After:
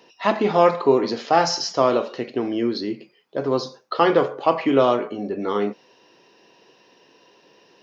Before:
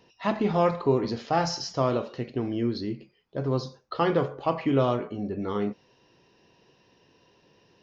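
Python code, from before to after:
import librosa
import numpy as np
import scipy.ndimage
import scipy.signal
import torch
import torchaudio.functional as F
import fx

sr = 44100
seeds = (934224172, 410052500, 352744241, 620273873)

y = scipy.signal.sosfilt(scipy.signal.butter(2, 290.0, 'highpass', fs=sr, output='sos'), x)
y = F.gain(torch.from_numpy(y), 8.0).numpy()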